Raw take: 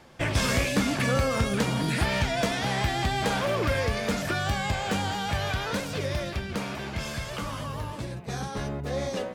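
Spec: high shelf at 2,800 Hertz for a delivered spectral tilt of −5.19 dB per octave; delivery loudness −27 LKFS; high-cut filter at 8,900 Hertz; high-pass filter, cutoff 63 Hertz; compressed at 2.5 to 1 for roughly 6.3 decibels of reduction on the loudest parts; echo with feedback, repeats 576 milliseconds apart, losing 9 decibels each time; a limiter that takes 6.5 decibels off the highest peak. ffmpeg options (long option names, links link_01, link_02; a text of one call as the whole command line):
ffmpeg -i in.wav -af "highpass=63,lowpass=8900,highshelf=frequency=2800:gain=-3.5,acompressor=threshold=-30dB:ratio=2.5,alimiter=level_in=2dB:limit=-24dB:level=0:latency=1,volume=-2dB,aecho=1:1:576|1152|1728|2304:0.355|0.124|0.0435|0.0152,volume=7.5dB" out.wav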